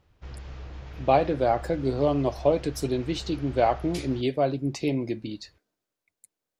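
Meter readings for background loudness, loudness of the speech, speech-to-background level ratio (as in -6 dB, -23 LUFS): -42.0 LUFS, -26.5 LUFS, 15.5 dB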